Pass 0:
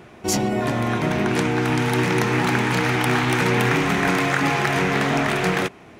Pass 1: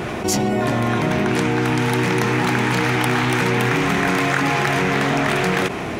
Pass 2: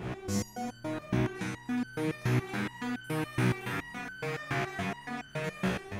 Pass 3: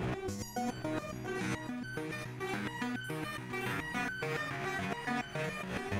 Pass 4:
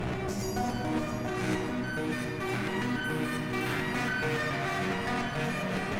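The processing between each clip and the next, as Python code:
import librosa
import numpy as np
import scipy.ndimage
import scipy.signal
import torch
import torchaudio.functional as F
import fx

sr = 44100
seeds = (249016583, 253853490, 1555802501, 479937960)

y1 = fx.env_flatten(x, sr, amount_pct=70)
y2 = fx.spec_trails(y1, sr, decay_s=1.66)
y2 = fx.bass_treble(y2, sr, bass_db=7, treble_db=-3)
y2 = fx.resonator_held(y2, sr, hz=7.1, low_hz=63.0, high_hz=1500.0)
y2 = F.gain(torch.from_numpy(y2), -8.5).numpy()
y3 = fx.over_compress(y2, sr, threshold_db=-37.0, ratio=-1.0)
y3 = y3 + 10.0 ** (-11.0 / 20.0) * np.pad(y3, (int(683 * sr / 1000.0), 0))[:len(y3)]
y4 = fx.tube_stage(y3, sr, drive_db=36.0, bias=0.55)
y4 = y4 + 10.0 ** (-55.0 / 20.0) * np.sin(2.0 * np.pi * 620.0 * np.arange(len(y4)) / sr)
y4 = fx.room_shoebox(y4, sr, seeds[0], volume_m3=130.0, walls='hard', distance_m=0.4)
y4 = F.gain(torch.from_numpy(y4), 7.0).numpy()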